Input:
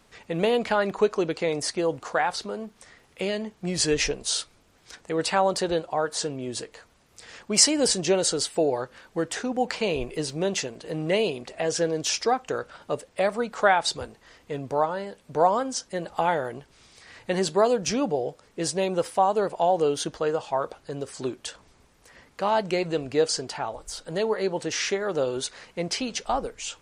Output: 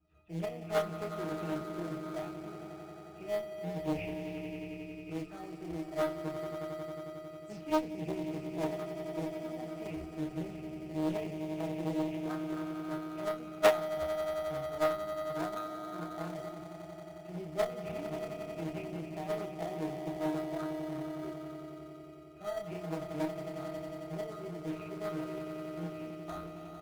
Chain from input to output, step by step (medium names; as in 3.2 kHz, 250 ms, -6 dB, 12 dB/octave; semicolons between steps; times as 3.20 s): delay that grows with frequency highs early, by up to 119 ms; pitch-class resonator D#, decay 0.22 s; echo with a slow build-up 90 ms, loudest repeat 5, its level -10.5 dB; in parallel at -5 dB: sample-and-hold 17×; on the sum: Chebyshev shaper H 3 -13 dB, 5 -37 dB, 6 -32 dB, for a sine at -14 dBFS; doubling 29 ms -5 dB; loudspeaker Doppler distortion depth 0.66 ms; trim +2.5 dB